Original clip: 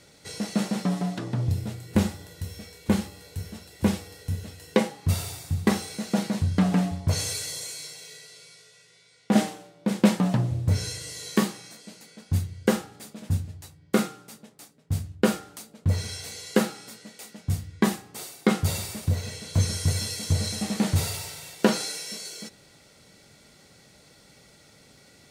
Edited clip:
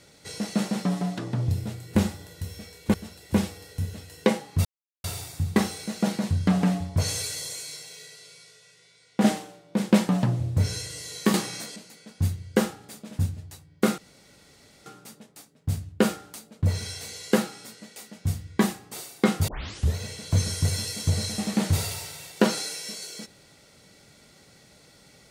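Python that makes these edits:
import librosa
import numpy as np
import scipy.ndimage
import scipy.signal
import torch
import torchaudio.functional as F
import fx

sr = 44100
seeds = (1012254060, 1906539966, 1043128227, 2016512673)

y = fx.edit(x, sr, fx.cut(start_s=2.94, length_s=0.5),
    fx.insert_silence(at_s=5.15, length_s=0.39),
    fx.clip_gain(start_s=11.45, length_s=0.42, db=9.5),
    fx.insert_room_tone(at_s=14.09, length_s=0.88),
    fx.tape_start(start_s=18.71, length_s=0.47), tone=tone)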